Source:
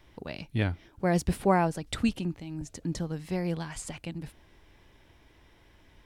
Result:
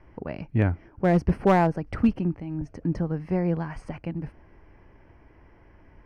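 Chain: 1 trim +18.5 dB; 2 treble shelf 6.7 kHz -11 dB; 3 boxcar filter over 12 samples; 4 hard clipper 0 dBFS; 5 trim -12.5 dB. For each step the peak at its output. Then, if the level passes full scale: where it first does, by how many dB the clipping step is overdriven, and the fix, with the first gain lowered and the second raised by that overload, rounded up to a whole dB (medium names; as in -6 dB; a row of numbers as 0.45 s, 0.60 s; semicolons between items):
+7.5 dBFS, +7.5 dBFS, +7.0 dBFS, 0.0 dBFS, -12.5 dBFS; step 1, 7.0 dB; step 1 +11.5 dB, step 5 -5.5 dB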